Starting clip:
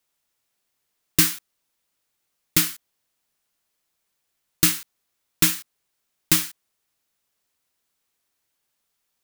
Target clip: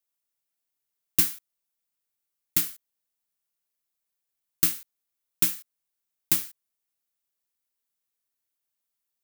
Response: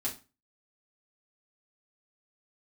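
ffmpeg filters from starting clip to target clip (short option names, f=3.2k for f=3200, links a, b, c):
-af "aeval=exprs='0.794*(cos(1*acos(clip(val(0)/0.794,-1,1)))-cos(1*PI/2))+0.158*(cos(3*acos(clip(val(0)/0.794,-1,1)))-cos(3*PI/2))':c=same,highshelf=f=9k:g=10,volume=-6dB"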